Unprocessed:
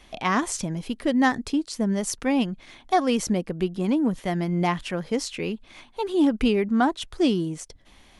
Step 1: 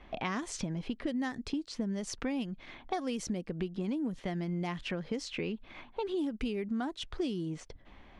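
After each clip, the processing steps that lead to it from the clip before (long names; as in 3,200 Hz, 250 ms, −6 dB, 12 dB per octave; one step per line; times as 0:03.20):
low-pass that shuts in the quiet parts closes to 1,900 Hz, open at −16.5 dBFS
dynamic equaliser 950 Hz, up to −5 dB, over −36 dBFS, Q 0.9
downward compressor 6 to 1, threshold −32 dBFS, peak gain reduction 14.5 dB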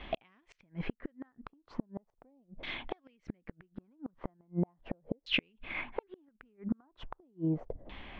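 gate with flip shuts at −27 dBFS, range −39 dB
auto-filter low-pass saw down 0.38 Hz 550–3,400 Hz
level +6 dB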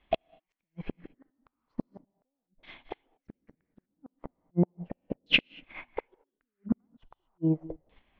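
dynamic equaliser 780 Hz, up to +3 dB, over −52 dBFS, Q 1
reverb whose tail is shaped and stops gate 260 ms rising, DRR 9 dB
expander for the loud parts 2.5 to 1, over −47 dBFS
level +9 dB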